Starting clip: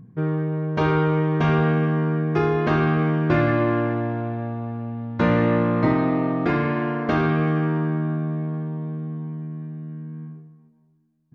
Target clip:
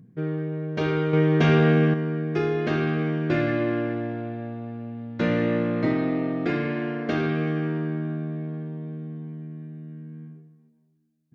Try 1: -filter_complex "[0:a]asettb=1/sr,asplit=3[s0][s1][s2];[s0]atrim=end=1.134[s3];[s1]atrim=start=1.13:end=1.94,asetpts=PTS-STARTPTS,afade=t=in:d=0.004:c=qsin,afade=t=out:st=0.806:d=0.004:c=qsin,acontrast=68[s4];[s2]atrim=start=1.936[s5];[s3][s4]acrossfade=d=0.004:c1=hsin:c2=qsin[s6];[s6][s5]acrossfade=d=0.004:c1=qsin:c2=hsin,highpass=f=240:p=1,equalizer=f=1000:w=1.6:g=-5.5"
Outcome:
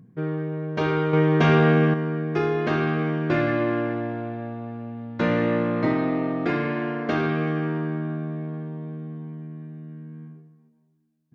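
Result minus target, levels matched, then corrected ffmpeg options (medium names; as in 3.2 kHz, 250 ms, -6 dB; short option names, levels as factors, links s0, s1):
1 kHz band +4.0 dB
-filter_complex "[0:a]asettb=1/sr,asplit=3[s0][s1][s2];[s0]atrim=end=1.134[s3];[s1]atrim=start=1.13:end=1.94,asetpts=PTS-STARTPTS,afade=t=in:d=0.004:c=qsin,afade=t=out:st=0.806:d=0.004:c=qsin,acontrast=68[s4];[s2]atrim=start=1.936[s5];[s3][s4]acrossfade=d=0.004:c1=hsin:c2=qsin[s6];[s6][s5]acrossfade=d=0.004:c1=qsin:c2=hsin,highpass=f=240:p=1,equalizer=f=1000:w=1.6:g=-13"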